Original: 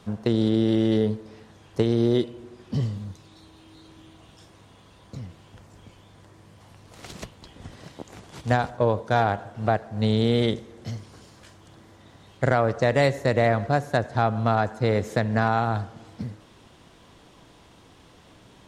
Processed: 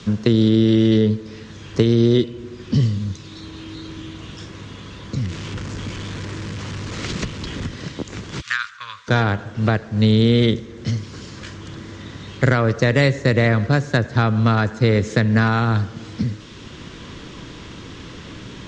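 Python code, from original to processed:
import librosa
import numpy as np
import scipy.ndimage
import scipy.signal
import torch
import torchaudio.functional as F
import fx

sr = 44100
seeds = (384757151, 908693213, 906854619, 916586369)

y = fx.zero_step(x, sr, step_db=-40.5, at=(5.17, 7.66))
y = fx.ellip_highpass(y, sr, hz=1200.0, order=4, stop_db=40, at=(8.4, 9.07), fade=0.02)
y = scipy.signal.sosfilt(scipy.signal.butter(6, 7200.0, 'lowpass', fs=sr, output='sos'), y)
y = fx.peak_eq(y, sr, hz=740.0, db=-14.0, octaves=0.87)
y = fx.band_squash(y, sr, depth_pct=40)
y = y * librosa.db_to_amplitude(9.0)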